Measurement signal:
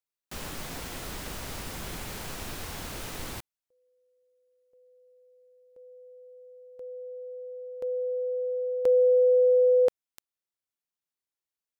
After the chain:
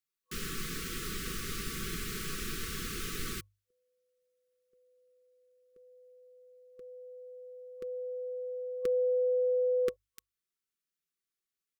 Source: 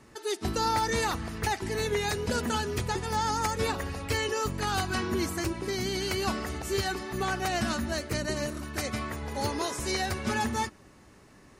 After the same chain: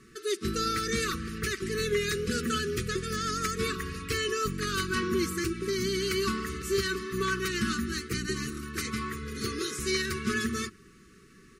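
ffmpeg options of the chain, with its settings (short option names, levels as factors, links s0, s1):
-af "bandreject=f=50:t=h:w=6,bandreject=f=100:t=h:w=6,afftfilt=real='re*(1-between(b*sr/4096,500,1100))':imag='im*(1-between(b*sr/4096,500,1100))':win_size=4096:overlap=0.75,aecho=1:1:5.3:0.38"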